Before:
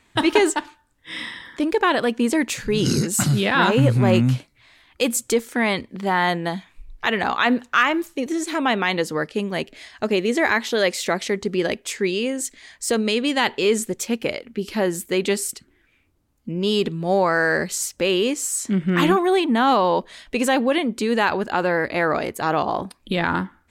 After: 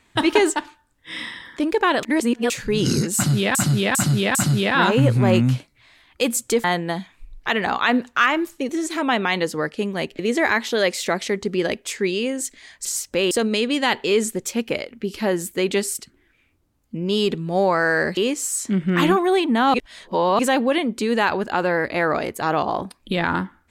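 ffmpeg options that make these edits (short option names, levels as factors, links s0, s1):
-filter_complex "[0:a]asplit=13[s0][s1][s2][s3][s4][s5][s6][s7][s8][s9][s10][s11][s12];[s0]atrim=end=2.032[s13];[s1]atrim=start=2.028:end=2.502,asetpts=PTS-STARTPTS,areverse[s14];[s2]atrim=start=2.498:end=3.552[s15];[s3]atrim=start=3.148:end=3.552[s16];[s4]atrim=start=3.148:end=3.552[s17];[s5]atrim=start=3.148:end=5.442[s18];[s6]atrim=start=6.208:end=9.762[s19];[s7]atrim=start=10.188:end=12.852[s20];[s8]atrim=start=17.708:end=18.172[s21];[s9]atrim=start=12.848:end=17.712[s22];[s10]atrim=start=18.168:end=19.742[s23];[s11]atrim=start=19.738:end=20.392,asetpts=PTS-STARTPTS,areverse[s24];[s12]atrim=start=20.388[s25];[s13][s14]acrossfade=d=0.004:c1=hsin:c2=hsin[s26];[s26][s15]acrossfade=d=0.004:c1=hsin:c2=hsin[s27];[s27][s16]acrossfade=d=0.004:c1=hsin:c2=hsin[s28];[s28][s17]acrossfade=d=0.004:c1=hsin:c2=hsin[s29];[s29][s18]acrossfade=d=0.004:c1=hsin:c2=hsin[s30];[s30][s19]acrossfade=d=0.004:c1=hsin:c2=hsin[s31];[s31][s20]acrossfade=d=0.004:c1=hsin:c2=hsin[s32];[s32][s21]acrossfade=d=0.004:c1=hsin:c2=hsin[s33];[s33][s22]acrossfade=d=0.004:c1=hsin:c2=hsin[s34];[s34][s23]acrossfade=d=0.004:c1=hsin:c2=hsin[s35];[s35][s24]acrossfade=d=0.004:c1=hsin:c2=hsin[s36];[s36][s25]acrossfade=d=0.004:c1=hsin:c2=hsin"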